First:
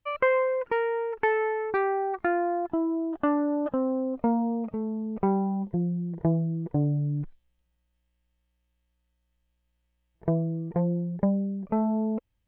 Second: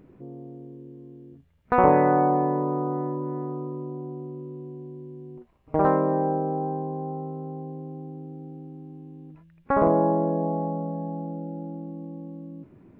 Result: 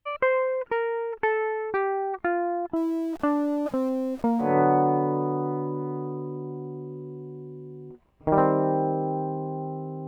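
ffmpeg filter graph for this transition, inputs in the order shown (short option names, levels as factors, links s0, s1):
-filter_complex "[0:a]asettb=1/sr,asplit=3[s0][s1][s2];[s0]atrim=end=2.764[s3];[s1]atrim=start=2.76:end=4.58,asetpts=PTS-STARTPTS,afade=t=in:d=0.004:c=qsin,afade=t=out:st=1.816:d=0.004:c=qsin,aeval=exprs='val(0)+0.5*0.00944*sgn(val(0))':c=same[s4];[s2]atrim=start=4.576[s5];[s3][s4]acrossfade=d=0.004:c1=hsin:c2=qsin[s6];[s6][s5]acrossfade=d=0.004:c1=qsin:c2=hsin,apad=whole_dur=10.07,atrim=end=10.07,atrim=end=4.58,asetpts=PTS-STARTPTS[s7];[1:a]atrim=start=1.85:end=7.54,asetpts=PTS-STARTPTS[s8];[s7][s8]acrossfade=d=0.2:c1=tri:c2=tri"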